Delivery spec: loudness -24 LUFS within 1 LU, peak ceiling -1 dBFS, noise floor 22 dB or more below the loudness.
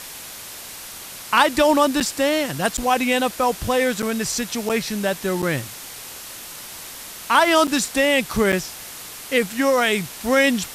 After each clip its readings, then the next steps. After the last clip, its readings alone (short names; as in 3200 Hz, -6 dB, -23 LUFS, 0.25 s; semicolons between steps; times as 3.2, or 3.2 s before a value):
dropouts 7; longest dropout 7.4 ms; noise floor -37 dBFS; noise floor target -42 dBFS; loudness -20.0 LUFS; peak -1.5 dBFS; loudness target -24.0 LUFS
-> interpolate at 2/2.77/4.02/4.69/5.42/7.67/8.52, 7.4 ms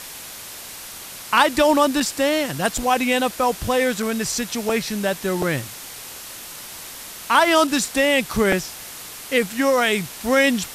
dropouts 0; noise floor -37 dBFS; noise floor target -42 dBFS
-> denoiser 6 dB, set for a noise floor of -37 dBFS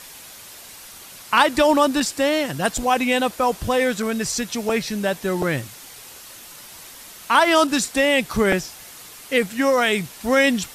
noise floor -42 dBFS; loudness -20.0 LUFS; peak -2.0 dBFS; loudness target -24.0 LUFS
-> gain -4 dB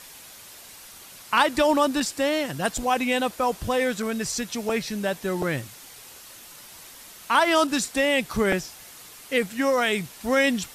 loudness -24.0 LUFS; peak -6.0 dBFS; noise floor -46 dBFS